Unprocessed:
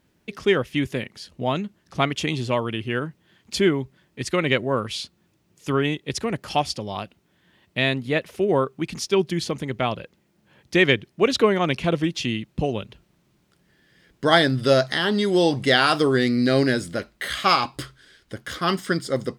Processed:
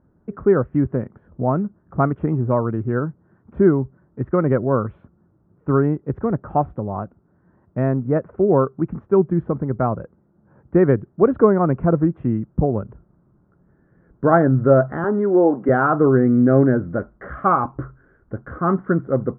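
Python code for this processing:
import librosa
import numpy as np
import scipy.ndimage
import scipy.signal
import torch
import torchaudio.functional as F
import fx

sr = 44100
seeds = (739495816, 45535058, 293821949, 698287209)

y = fx.highpass(x, sr, hz=230.0, slope=24, at=(15.04, 15.69))
y = scipy.signal.sosfilt(scipy.signal.ellip(4, 1.0, 70, 1400.0, 'lowpass', fs=sr, output='sos'), y)
y = fx.low_shelf(y, sr, hz=250.0, db=7.5)
y = y * librosa.db_to_amplitude(2.5)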